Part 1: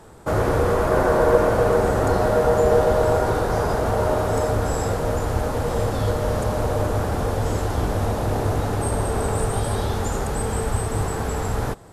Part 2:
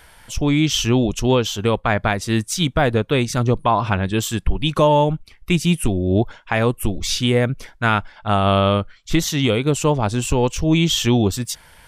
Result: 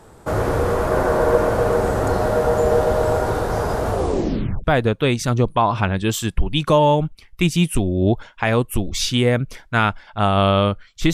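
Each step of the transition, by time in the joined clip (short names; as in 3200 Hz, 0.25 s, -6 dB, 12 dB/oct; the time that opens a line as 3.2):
part 1
3.89 tape stop 0.75 s
4.64 switch to part 2 from 2.73 s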